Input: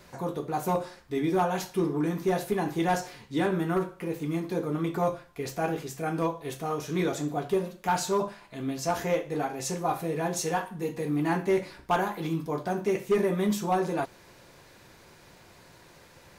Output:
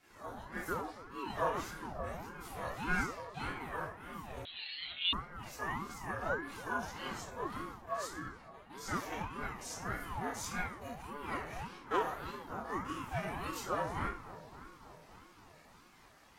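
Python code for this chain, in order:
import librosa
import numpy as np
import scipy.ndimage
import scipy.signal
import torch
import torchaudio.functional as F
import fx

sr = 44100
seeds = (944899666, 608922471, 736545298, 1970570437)

p1 = fx.spec_steps(x, sr, hold_ms=50)
p2 = scipy.signal.sosfilt(scipy.signal.butter(2, 550.0, 'highpass', fs=sr, output='sos'), p1)
p3 = fx.peak_eq(p2, sr, hz=1400.0, db=6.5, octaves=0.24)
p4 = fx.auto_swell(p3, sr, attack_ms=502.0, at=(1.72, 2.4), fade=0.02)
p5 = fx.level_steps(p4, sr, step_db=18, at=(7.82, 8.7))
p6 = fx.chorus_voices(p5, sr, voices=6, hz=0.31, base_ms=28, depth_ms=1.1, mix_pct=60)
p7 = p6 + fx.echo_filtered(p6, sr, ms=282, feedback_pct=79, hz=1400.0, wet_db=-14.0, dry=0)
p8 = fx.rev_fdn(p7, sr, rt60_s=0.42, lf_ratio=1.5, hf_ratio=0.75, size_ms=20.0, drr_db=-5.5)
p9 = fx.freq_invert(p8, sr, carrier_hz=3900, at=(4.45, 5.13))
p10 = fx.ring_lfo(p9, sr, carrier_hz=470.0, swing_pct=55, hz=1.7)
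y = F.gain(torch.from_numpy(p10), -7.0).numpy()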